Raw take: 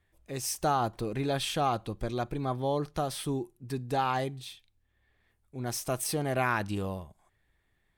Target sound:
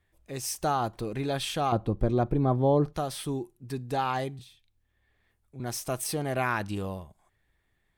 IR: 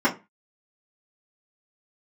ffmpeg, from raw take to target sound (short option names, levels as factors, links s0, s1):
-filter_complex "[0:a]asettb=1/sr,asplit=3[s0][s1][s2];[s0]atrim=end=1.724[s3];[s1]atrim=start=1.72:end=2.93,asetpts=PTS-STARTPTS,afade=t=in:d=0.004:c=qsin,afade=t=out:st=1.206:d=0.004:c=qsin,tiltshelf=f=1400:g=9[s4];[s2]atrim=start=2.926[s5];[s3][s4]acrossfade=d=0.004:c1=hsin:c2=qsin[s6];[s6][s5]acrossfade=d=0.004:c1=qsin:c2=hsin,asettb=1/sr,asplit=3[s7][s8][s9];[s7]atrim=end=4.394[s10];[s8]atrim=start=4.39:end=5.6,asetpts=PTS-STARTPTS,afade=t=in:d=0.004:c=qsin,afade=t=out:st=1.206:d=0.004:c=qsin,acrossover=split=210[s11][s12];[s12]acompressor=threshold=0.00178:ratio=3[s13];[s11][s13]amix=inputs=2:normalize=0[s14];[s9]atrim=start=5.596[s15];[s10][s14]acrossfade=d=0.004:c1=hsin:c2=qsin[s16];[s16][s15]acrossfade=d=0.004:c1=qsin:c2=hsin"